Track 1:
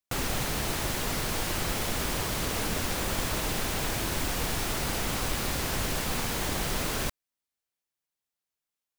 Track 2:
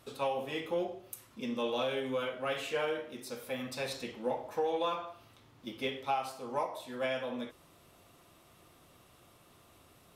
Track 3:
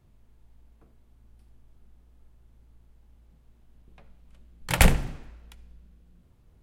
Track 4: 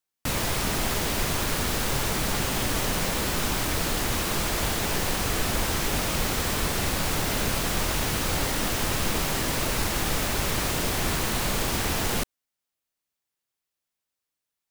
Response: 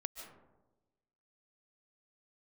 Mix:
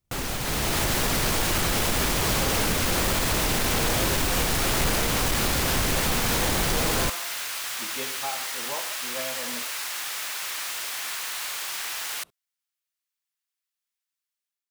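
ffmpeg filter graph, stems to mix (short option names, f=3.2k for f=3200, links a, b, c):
-filter_complex "[0:a]alimiter=limit=-23dB:level=0:latency=1:release=116,volume=3dB[a];[1:a]adelay=2150,volume=-9dB[b];[2:a]volume=-18.5dB[c];[3:a]highpass=1.3k,volume=-9.5dB[d];[a][b][c][d]amix=inputs=4:normalize=0,dynaudnorm=f=400:g=3:m=8dB,asoftclip=type=tanh:threshold=-17dB"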